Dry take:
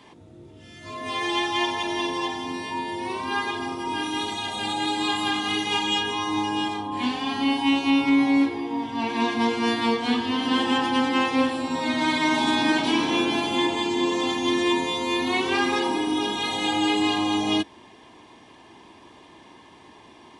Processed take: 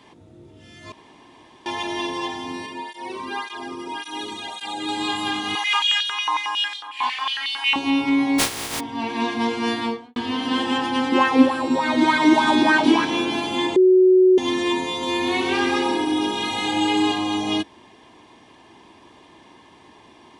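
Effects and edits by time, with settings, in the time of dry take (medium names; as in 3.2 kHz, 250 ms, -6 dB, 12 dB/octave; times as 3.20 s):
0.92–1.66 s: room tone
2.66–4.89 s: cancelling through-zero flanger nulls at 1.8 Hz, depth 1.5 ms
5.55–7.76 s: step-sequenced high-pass 11 Hz 960–3700 Hz
8.38–8.79 s: spectral contrast reduction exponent 0.2
9.76–10.16 s: studio fade out
11.12–13.05 s: sweeping bell 3.4 Hz 280–1600 Hz +13 dB
13.76–14.38 s: bleep 371 Hz -10 dBFS
14.90–17.12 s: delay 126 ms -4.5 dB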